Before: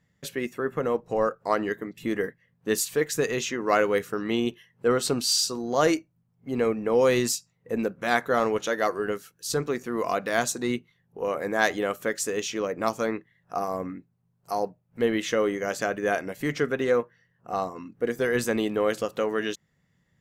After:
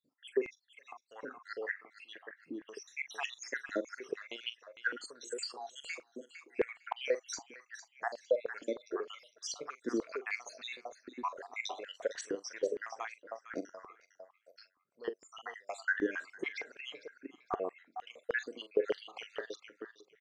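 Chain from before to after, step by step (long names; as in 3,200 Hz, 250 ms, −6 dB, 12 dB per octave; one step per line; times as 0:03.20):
time-frequency cells dropped at random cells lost 78%
low-pass filter 6,300 Hz 24 dB per octave
downward compressor 2.5 to 1, threshold −36 dBFS, peak gain reduction 11.5 dB
double-tracking delay 43 ms −14 dB
pitch vibrato 5.6 Hz 13 cents
repeating echo 455 ms, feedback 22%, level −12 dB
high-pass on a step sequencer 6.5 Hz 290–2,900 Hz
level −2.5 dB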